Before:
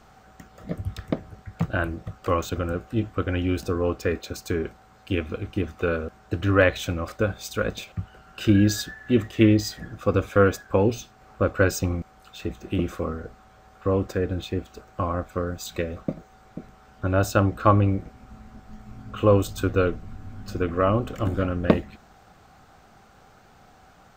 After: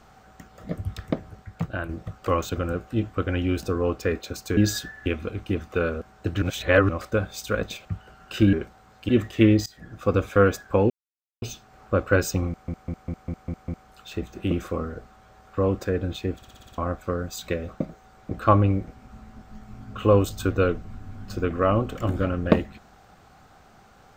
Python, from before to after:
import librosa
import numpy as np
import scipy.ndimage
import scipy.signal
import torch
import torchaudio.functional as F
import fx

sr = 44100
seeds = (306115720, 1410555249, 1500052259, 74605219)

y = fx.edit(x, sr, fx.fade_out_to(start_s=1.31, length_s=0.58, floor_db=-7.0),
    fx.swap(start_s=4.57, length_s=0.56, other_s=8.6, other_length_s=0.49),
    fx.reverse_span(start_s=6.49, length_s=0.47),
    fx.fade_in_from(start_s=9.66, length_s=0.4, floor_db=-21.5),
    fx.insert_silence(at_s=10.9, length_s=0.52),
    fx.stutter(start_s=11.96, slice_s=0.2, count=7),
    fx.stutter_over(start_s=14.64, slice_s=0.06, count=7),
    fx.cut(start_s=16.59, length_s=0.9), tone=tone)